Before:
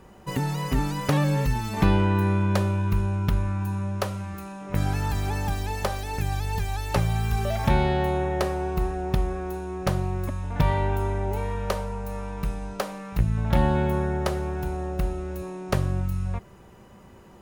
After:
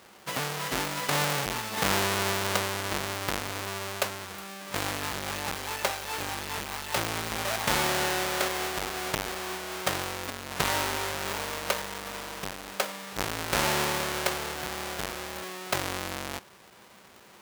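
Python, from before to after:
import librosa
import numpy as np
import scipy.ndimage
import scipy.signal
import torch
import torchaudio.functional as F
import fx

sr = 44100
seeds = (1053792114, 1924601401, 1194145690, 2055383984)

y = fx.halfwave_hold(x, sr)
y = fx.highpass(y, sr, hz=1100.0, slope=6)
y = fx.over_compress(y, sr, threshold_db=-24.0, ratio=-0.5)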